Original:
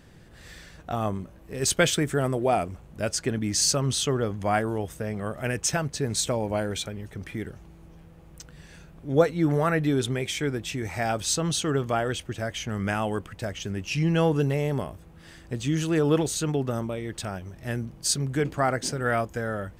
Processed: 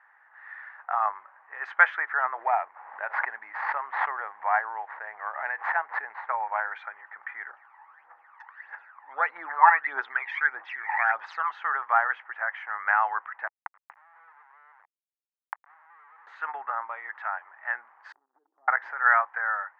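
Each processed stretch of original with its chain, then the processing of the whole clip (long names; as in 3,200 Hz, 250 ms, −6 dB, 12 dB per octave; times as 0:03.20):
0:02.38–0:06.29: running median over 15 samples + parametric band 1,300 Hz −6 dB 0.53 octaves + background raised ahead of every attack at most 48 dB per second
0:07.49–0:11.51: parametric band 4,900 Hz +6.5 dB 0.57 octaves + phase shifter 1.6 Hz, delay 1.2 ms, feedback 72%
0:13.47–0:16.27: dynamic equaliser 460 Hz, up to +8 dB, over −36 dBFS, Q 0.82 + comparator with hysteresis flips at −23.5 dBFS + gate with flip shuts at −26 dBFS, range −33 dB
0:18.12–0:18.68: transistor ladder low-pass 360 Hz, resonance 60% + downward compressor 10 to 1, threshold −39 dBFS
whole clip: elliptic band-pass filter 840–1,900 Hz, stop band 80 dB; automatic gain control gain up to 5 dB; level +5 dB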